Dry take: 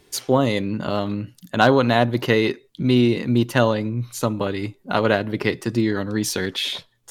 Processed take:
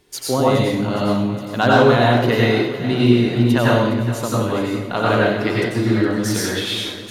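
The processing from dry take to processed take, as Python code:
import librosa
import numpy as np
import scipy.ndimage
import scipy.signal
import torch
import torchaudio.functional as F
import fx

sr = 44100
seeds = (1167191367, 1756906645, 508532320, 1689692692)

y = fx.echo_feedback(x, sr, ms=414, feedback_pct=59, wet_db=-13.5)
y = fx.rev_plate(y, sr, seeds[0], rt60_s=0.72, hf_ratio=0.9, predelay_ms=80, drr_db=-5.0)
y = y * 10.0 ** (-3.0 / 20.0)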